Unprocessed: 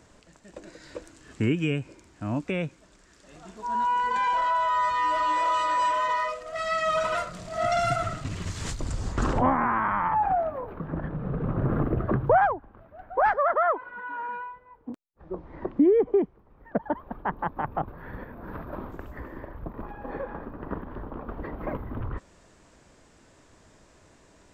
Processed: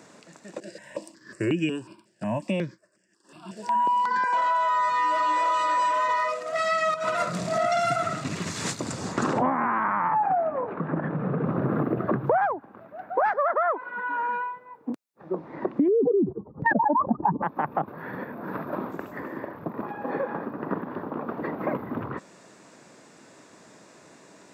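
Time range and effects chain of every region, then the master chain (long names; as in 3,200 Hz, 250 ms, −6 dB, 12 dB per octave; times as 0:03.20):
0:00.60–0:04.33: downward expander −48 dBFS + EQ curve with evenly spaced ripples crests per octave 1.3, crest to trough 9 dB + step-sequenced phaser 5.5 Hz 280–4,000 Hz
0:06.94–0:07.59: high-pass filter 47 Hz + low-shelf EQ 240 Hz +6.5 dB + compressor whose output falls as the input rises −29 dBFS, ratio −0.5
0:09.84–0:11.46: low-pass filter 2,700 Hz + one half of a high-frequency compander encoder only
0:15.88–0:17.42: expanding power law on the bin magnitudes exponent 2.6 + noise gate −51 dBFS, range −16 dB + envelope flattener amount 100%
whole clip: high-pass filter 150 Hz 24 dB per octave; notch filter 3,100 Hz, Q 12; downward compressor 3 to 1, threshold −29 dBFS; level +6.5 dB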